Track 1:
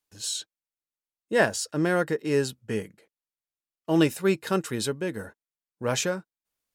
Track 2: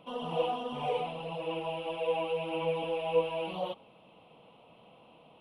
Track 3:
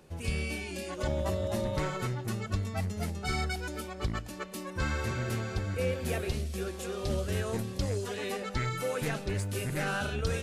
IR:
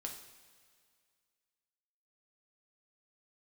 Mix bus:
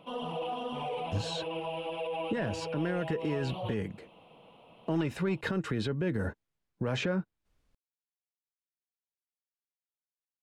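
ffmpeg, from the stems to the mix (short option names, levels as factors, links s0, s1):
-filter_complex "[0:a]aemphasis=mode=reproduction:type=riaa,acontrast=66,adynamicequalizer=threshold=0.0224:dfrequency=2000:dqfactor=0.7:tfrequency=2000:tqfactor=0.7:attack=5:release=100:ratio=0.375:range=2:mode=boostabove:tftype=highshelf,adelay=1000,volume=1.26[s0];[1:a]alimiter=level_in=1.78:limit=0.0631:level=0:latency=1:release=25,volume=0.562,volume=1.12[s1];[s0]acrossover=split=190|840|3600[s2][s3][s4][s5];[s2]acompressor=threshold=0.0447:ratio=4[s6];[s3]acompressor=threshold=0.1:ratio=4[s7];[s4]acompressor=threshold=0.0501:ratio=4[s8];[s5]acompressor=threshold=0.00316:ratio=4[s9];[s6][s7][s8][s9]amix=inputs=4:normalize=0,alimiter=limit=0.119:level=0:latency=1:release=108,volume=1[s10];[s1][s10]amix=inputs=2:normalize=0,alimiter=limit=0.0794:level=0:latency=1:release=424"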